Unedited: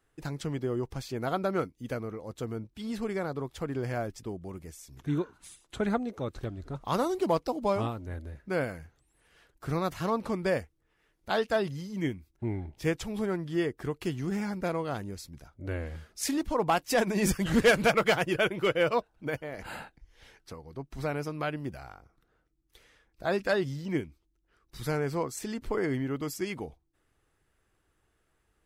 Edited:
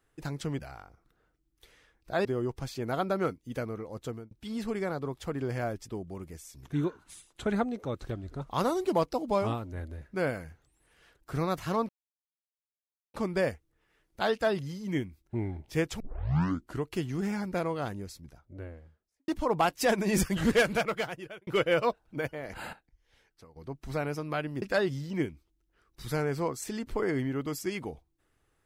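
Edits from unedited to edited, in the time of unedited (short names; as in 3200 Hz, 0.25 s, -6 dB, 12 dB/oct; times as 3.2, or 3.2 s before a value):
2.4–2.65 fade out
10.23 insert silence 1.25 s
13.09 tape start 0.83 s
14.92–16.37 studio fade out
17.4–18.56 fade out
19.82–20.65 gain -10.5 dB
21.71–23.37 move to 0.59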